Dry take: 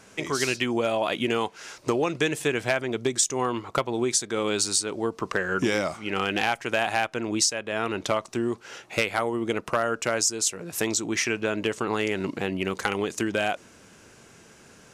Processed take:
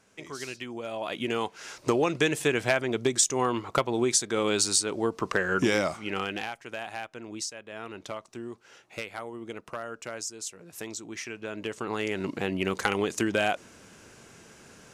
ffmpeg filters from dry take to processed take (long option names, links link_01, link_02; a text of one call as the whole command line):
ffmpeg -i in.wav -af "volume=12dB,afade=type=in:start_time=0.82:duration=1:silence=0.251189,afade=type=out:start_time=5.85:duration=0.66:silence=0.251189,afade=type=in:start_time=11.35:duration=1.38:silence=0.251189" out.wav